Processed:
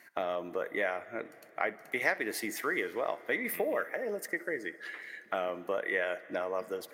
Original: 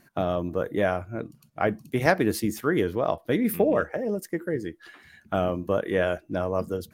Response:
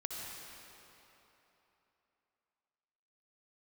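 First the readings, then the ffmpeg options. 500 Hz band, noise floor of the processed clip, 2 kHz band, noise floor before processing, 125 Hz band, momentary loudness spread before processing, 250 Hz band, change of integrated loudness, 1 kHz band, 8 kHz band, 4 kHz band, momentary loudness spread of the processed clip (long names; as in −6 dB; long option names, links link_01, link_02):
−8.5 dB, −56 dBFS, −0.5 dB, −62 dBFS, −24.0 dB, 8 LU, −14.0 dB, −7.5 dB, −6.5 dB, −4.0 dB, −5.0 dB, 8 LU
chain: -filter_complex "[0:a]highpass=430,equalizer=frequency=2000:width_type=o:width=0.34:gain=14.5,acompressor=threshold=-34dB:ratio=2,asplit=2[link_01][link_02];[1:a]atrim=start_sample=2205,adelay=63[link_03];[link_02][link_03]afir=irnorm=-1:irlink=0,volume=-17.5dB[link_04];[link_01][link_04]amix=inputs=2:normalize=0"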